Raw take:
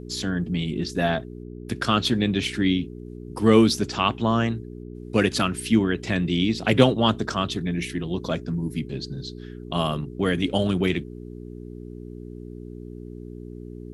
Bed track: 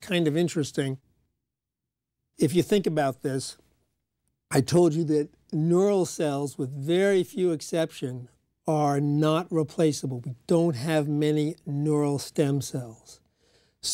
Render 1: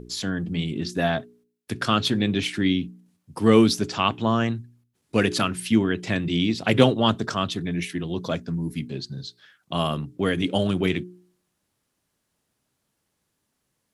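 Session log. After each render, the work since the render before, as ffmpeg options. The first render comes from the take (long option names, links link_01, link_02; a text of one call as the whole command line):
ffmpeg -i in.wav -af "bandreject=frequency=60:width_type=h:width=4,bandreject=frequency=120:width_type=h:width=4,bandreject=frequency=180:width_type=h:width=4,bandreject=frequency=240:width_type=h:width=4,bandreject=frequency=300:width_type=h:width=4,bandreject=frequency=360:width_type=h:width=4,bandreject=frequency=420:width_type=h:width=4" out.wav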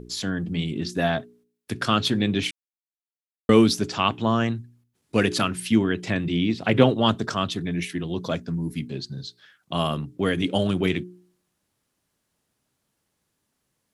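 ffmpeg -i in.wav -filter_complex "[0:a]asettb=1/sr,asplit=3[link_01][link_02][link_03];[link_01]atrim=end=6.104[link_04];[link_02]atrim=start=6.1:end=6.93,asetpts=PTS-STARTPTS,afade=type=in:duration=0.004:curve=qsin,afade=type=out:start_time=0.826:duration=0.004:curve=qsin,acrossover=split=3300[link_05][link_06];[link_06]acompressor=threshold=-44dB:ratio=4:attack=1:release=60[link_07];[link_05][link_07]amix=inputs=2:normalize=0[link_08];[link_03]atrim=start=6.926[link_09];[link_04][link_08]acrossfade=duration=0.004:curve1=hsin:curve2=qsin[link_10];[link_10][link_09]acrossfade=duration=0.004:curve1=qsin:curve2=hsin,asplit=3[link_11][link_12][link_13];[link_11]atrim=end=2.51,asetpts=PTS-STARTPTS,afade=type=out:start_time=2.506:duration=0.004:curve=hsin[link_14];[link_12]atrim=start=2.51:end=3.49,asetpts=PTS-STARTPTS,volume=0[link_15];[link_13]atrim=start=3.49,asetpts=PTS-STARTPTS,afade=type=in:duration=0.004:curve=hsin[link_16];[link_14][link_15][link_16]concat=n=3:v=0:a=1" out.wav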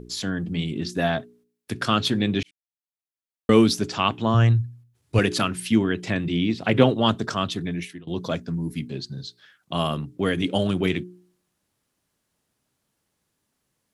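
ffmpeg -i in.wav -filter_complex "[0:a]asettb=1/sr,asplit=3[link_01][link_02][link_03];[link_01]atrim=end=4.344[link_04];[link_02]atrim=start=4.34:end=5.19,asetpts=PTS-STARTPTS,afade=type=in:duration=0.004:curve=qsin,afade=type=out:start_time=0.846:duration=0.004:curve=qsin,lowshelf=frequency=150:width_type=q:width=3:gain=7[link_05];[link_03]atrim=start=5.186[link_06];[link_04][link_05]acrossfade=duration=0.004:curve1=hsin:curve2=qsin[link_07];[link_07][link_06]acrossfade=duration=0.004:curve1=qsin:curve2=hsin,asplit=3[link_08][link_09][link_10];[link_08]atrim=end=2.43,asetpts=PTS-STARTPTS,afade=type=out:start_time=2.426:duration=0.004:curve=hsin[link_11];[link_09]atrim=start=2.43:end=8.07,asetpts=PTS-STARTPTS,afade=type=in:duration=1.13,afade=type=out:start_time=5.24:duration=0.4:silence=0.0749894[link_12];[link_10]atrim=start=8.07,asetpts=PTS-STARTPTS,afade=type=in:duration=0.004:curve=hsin:silence=0.0749894[link_13];[link_11][link_12][link_13]concat=n=3:v=0:a=1" out.wav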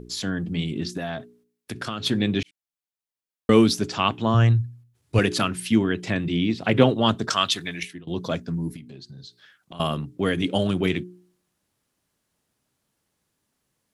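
ffmpeg -i in.wav -filter_complex "[0:a]asettb=1/sr,asplit=3[link_01][link_02][link_03];[link_01]atrim=end=0.974[link_04];[link_02]atrim=start=0.97:end=2.06,asetpts=PTS-STARTPTS,afade=type=in:duration=0.004:curve=qsin,afade=type=out:start_time=1.086:duration=0.004:curve=qsin,acompressor=threshold=-26dB:ratio=6:attack=3.2:release=140:knee=1:detection=peak[link_05];[link_03]atrim=start=2.056[link_06];[link_04][link_05]acrossfade=duration=0.004:curve1=hsin:curve2=qsin[link_07];[link_07][link_06]acrossfade=duration=0.004:curve1=qsin:curve2=hsin,asettb=1/sr,asplit=3[link_08][link_09][link_10];[link_08]atrim=end=7.304[link_11];[link_09]atrim=start=7.3:end=7.83,asetpts=PTS-STARTPTS,afade=type=in:duration=0.004:curve=qsin,afade=type=out:start_time=0.526:duration=0.004:curve=qsin,tiltshelf=frequency=700:gain=-9.5[link_12];[link_10]atrim=start=7.826[link_13];[link_11][link_12]acrossfade=duration=0.004:curve1=hsin:curve2=qsin[link_14];[link_14][link_13]acrossfade=duration=0.004:curve1=qsin:curve2=hsin,asettb=1/sr,asplit=3[link_15][link_16][link_17];[link_15]atrim=end=8.764[link_18];[link_16]atrim=start=8.76:end=9.8,asetpts=PTS-STARTPTS,afade=type=in:duration=0.004:curve=qsin,afade=type=out:start_time=1.036:duration=0.004:curve=qsin,acompressor=threshold=-40dB:ratio=4:attack=3.2:release=140:knee=1:detection=peak[link_19];[link_17]atrim=start=9.796[link_20];[link_18][link_19]acrossfade=duration=0.004:curve1=hsin:curve2=qsin[link_21];[link_21][link_20]acrossfade=duration=0.004:curve1=qsin:curve2=hsin" out.wav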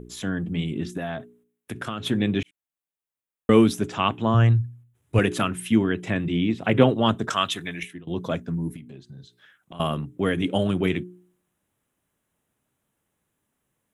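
ffmpeg -i in.wav -af "equalizer=frequency=5000:width_type=o:width=0.75:gain=-11.5,bandreject=frequency=4400:width=9.3" out.wav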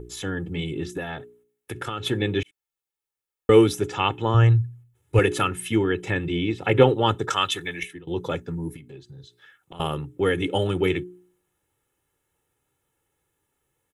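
ffmpeg -i in.wav -af "aecho=1:1:2.3:0.69" out.wav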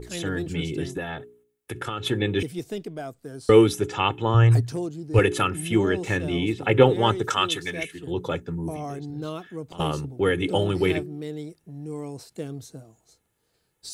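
ffmpeg -i in.wav -i bed.wav -filter_complex "[1:a]volume=-10dB[link_01];[0:a][link_01]amix=inputs=2:normalize=0" out.wav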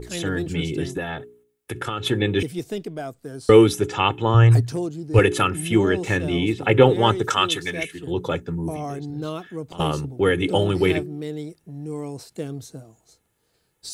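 ffmpeg -i in.wav -af "volume=3dB,alimiter=limit=-2dB:level=0:latency=1" out.wav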